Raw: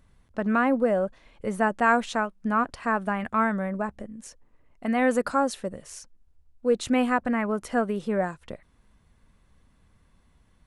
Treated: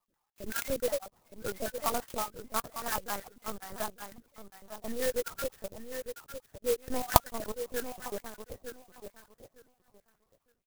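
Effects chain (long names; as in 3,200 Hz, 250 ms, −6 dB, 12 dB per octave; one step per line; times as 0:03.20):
time-frequency cells dropped at random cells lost 57%
high-pass filter 300 Hz 12 dB per octave
dynamic equaliser 860 Hz, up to +3 dB, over −35 dBFS, Q 1.2
in parallel at −3 dB: brickwall limiter −20.5 dBFS, peak gain reduction 11 dB
on the sum: high-frequency loss of the air 94 metres
on a send: repeating echo 908 ms, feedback 18%, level −8.5 dB
on the sum: linear-prediction vocoder at 8 kHz pitch kept
converter with an unsteady clock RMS 0.097 ms
level −9 dB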